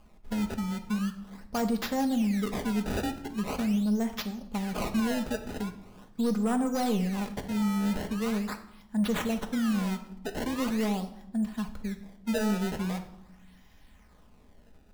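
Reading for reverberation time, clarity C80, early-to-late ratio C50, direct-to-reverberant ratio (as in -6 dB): 0.85 s, 15.0 dB, 12.0 dB, 4.5 dB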